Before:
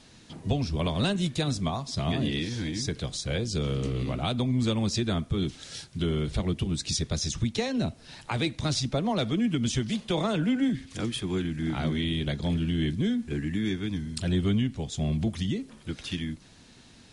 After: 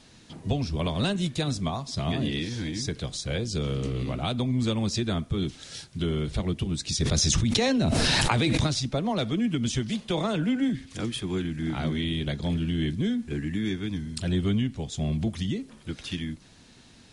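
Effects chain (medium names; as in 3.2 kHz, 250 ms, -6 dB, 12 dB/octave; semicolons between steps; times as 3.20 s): 7.00–8.67 s: level flattener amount 100%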